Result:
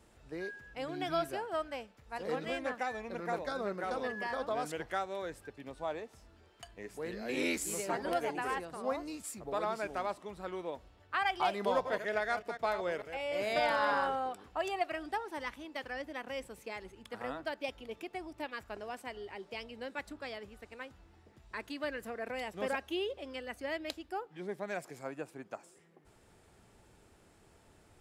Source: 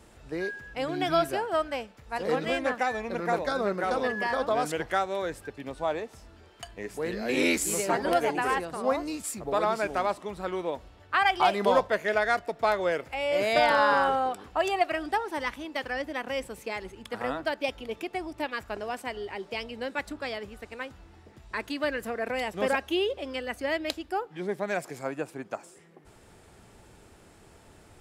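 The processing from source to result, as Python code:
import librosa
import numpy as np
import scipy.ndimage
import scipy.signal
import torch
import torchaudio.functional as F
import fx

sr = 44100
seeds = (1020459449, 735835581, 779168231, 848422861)

y = fx.reverse_delay(x, sr, ms=149, wet_db=-9.5, at=(11.68, 14.07))
y = F.gain(torch.from_numpy(y), -8.5).numpy()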